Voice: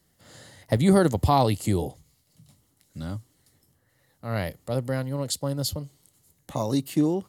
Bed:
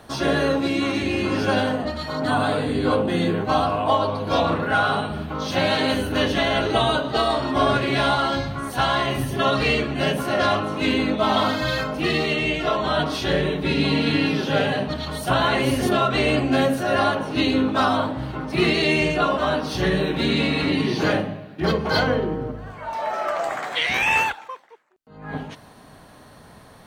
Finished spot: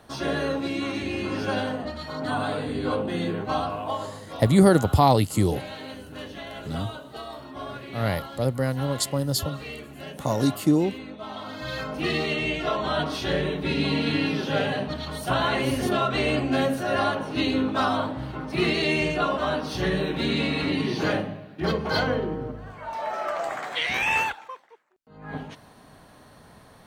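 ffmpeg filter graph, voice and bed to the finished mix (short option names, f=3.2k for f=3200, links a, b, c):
-filter_complex "[0:a]adelay=3700,volume=2.5dB[a];[1:a]volume=7dB,afade=t=out:st=3.54:d=0.74:silence=0.281838,afade=t=in:st=11.45:d=0.56:silence=0.223872[b];[a][b]amix=inputs=2:normalize=0"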